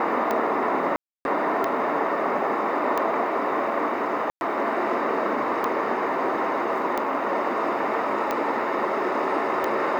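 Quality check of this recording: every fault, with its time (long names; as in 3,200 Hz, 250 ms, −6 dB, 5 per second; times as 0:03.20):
scratch tick 45 rpm −12 dBFS
0:00.96–0:01.25: drop-out 291 ms
0:04.30–0:04.41: drop-out 111 ms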